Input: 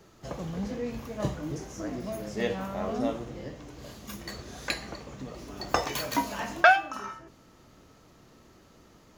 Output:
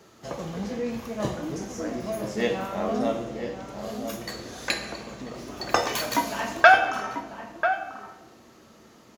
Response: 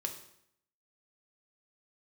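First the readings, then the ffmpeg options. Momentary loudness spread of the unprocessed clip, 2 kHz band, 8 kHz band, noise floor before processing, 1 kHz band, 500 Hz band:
18 LU, +4.5 dB, +4.5 dB, -57 dBFS, +4.5 dB, +5.0 dB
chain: -filter_complex "[0:a]highpass=f=200:p=1,asplit=2[s0][s1];[s1]adelay=991.3,volume=0.398,highshelf=f=4000:g=-22.3[s2];[s0][s2]amix=inputs=2:normalize=0,asplit=2[s3][s4];[1:a]atrim=start_sample=2205,asetrate=26901,aresample=44100[s5];[s4][s5]afir=irnorm=-1:irlink=0,volume=0.841[s6];[s3][s6]amix=inputs=2:normalize=0,volume=0.794"

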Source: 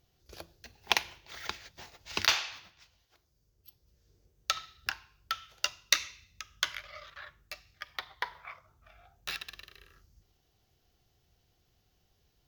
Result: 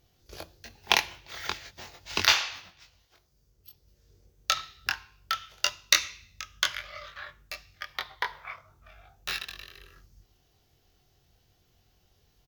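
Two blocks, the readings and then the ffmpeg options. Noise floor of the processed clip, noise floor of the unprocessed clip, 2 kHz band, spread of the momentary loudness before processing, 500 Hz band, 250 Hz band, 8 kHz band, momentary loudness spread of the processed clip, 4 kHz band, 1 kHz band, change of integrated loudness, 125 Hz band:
-68 dBFS, -74 dBFS, +5.0 dB, 21 LU, +5.0 dB, +5.0 dB, +5.0 dB, 21 LU, +5.0 dB, +5.0 dB, +4.5 dB, +5.5 dB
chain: -filter_complex "[0:a]asplit=2[s0][s1];[s1]adelay=22,volume=0.631[s2];[s0][s2]amix=inputs=2:normalize=0,volume=1.5"

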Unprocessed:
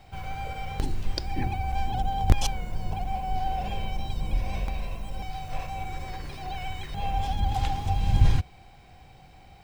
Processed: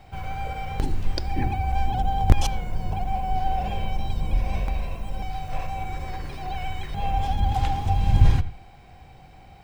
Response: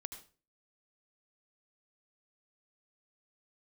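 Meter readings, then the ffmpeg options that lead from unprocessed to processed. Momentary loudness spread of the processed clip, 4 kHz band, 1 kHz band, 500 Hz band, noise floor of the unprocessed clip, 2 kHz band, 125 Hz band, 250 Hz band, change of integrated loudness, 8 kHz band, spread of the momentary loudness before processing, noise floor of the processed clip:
12 LU, 0.0 dB, +3.5 dB, +3.5 dB, -51 dBFS, +2.0 dB, +3.5 dB, +3.5 dB, +3.5 dB, -0.5 dB, 12 LU, -48 dBFS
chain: -filter_complex "[0:a]asplit=2[s0][s1];[1:a]atrim=start_sample=2205,lowpass=3000[s2];[s1][s2]afir=irnorm=-1:irlink=0,volume=0.75[s3];[s0][s3]amix=inputs=2:normalize=0"

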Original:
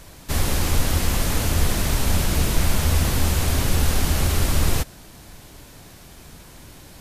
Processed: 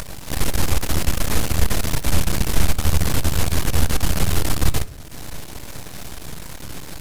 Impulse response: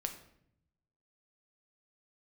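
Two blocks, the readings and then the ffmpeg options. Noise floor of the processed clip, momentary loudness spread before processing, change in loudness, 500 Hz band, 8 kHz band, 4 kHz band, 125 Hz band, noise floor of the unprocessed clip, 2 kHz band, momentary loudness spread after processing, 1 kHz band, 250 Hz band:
-35 dBFS, 3 LU, -0.5 dB, 0.0 dB, 0.0 dB, 0.0 dB, -0.5 dB, -45 dBFS, 0.0 dB, 14 LU, 0.0 dB, +0.5 dB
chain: -filter_complex "[0:a]acompressor=mode=upward:threshold=0.0631:ratio=2.5,aeval=exprs='max(val(0),0)':c=same,asplit=2[s0][s1];[1:a]atrim=start_sample=2205[s2];[s1][s2]afir=irnorm=-1:irlink=0,volume=0.531[s3];[s0][s3]amix=inputs=2:normalize=0"

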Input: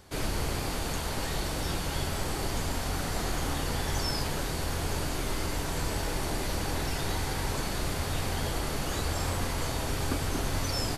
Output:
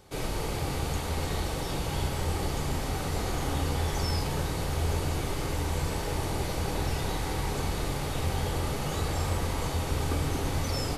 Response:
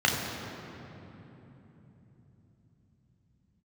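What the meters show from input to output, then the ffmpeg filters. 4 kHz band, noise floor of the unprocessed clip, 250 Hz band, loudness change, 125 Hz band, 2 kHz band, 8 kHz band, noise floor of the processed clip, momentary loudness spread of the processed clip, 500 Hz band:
-2.0 dB, -33 dBFS, +1.0 dB, +1.0 dB, +3.0 dB, -2.0 dB, -2.5 dB, -33 dBFS, 2 LU, +1.5 dB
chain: -filter_complex "[0:a]asplit=2[s0][s1];[1:a]atrim=start_sample=2205,asetrate=27783,aresample=44100[s2];[s1][s2]afir=irnorm=-1:irlink=0,volume=0.0891[s3];[s0][s3]amix=inputs=2:normalize=0,volume=0.794"

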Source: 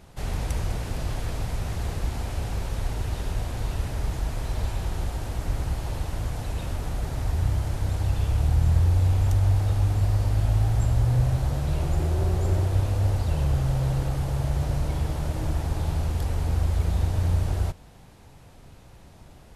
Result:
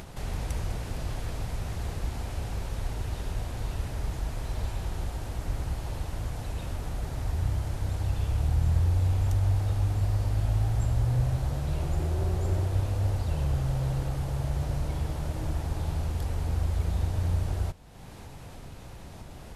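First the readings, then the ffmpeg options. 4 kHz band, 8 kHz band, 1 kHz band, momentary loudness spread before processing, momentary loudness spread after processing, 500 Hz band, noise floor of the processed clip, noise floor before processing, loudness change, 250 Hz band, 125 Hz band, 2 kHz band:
-4.0 dB, -4.0 dB, -4.0 dB, 9 LU, 9 LU, -4.0 dB, -44 dBFS, -49 dBFS, -4.0 dB, -4.0 dB, -4.0 dB, -4.0 dB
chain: -af "acompressor=mode=upward:threshold=0.0355:ratio=2.5,volume=0.631"

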